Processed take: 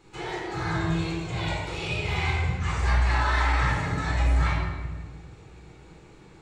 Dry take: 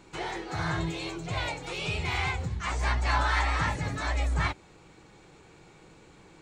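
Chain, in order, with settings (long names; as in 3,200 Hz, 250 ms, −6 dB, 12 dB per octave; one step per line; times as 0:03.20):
rectangular room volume 1,300 cubic metres, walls mixed, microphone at 4 metres
level −6 dB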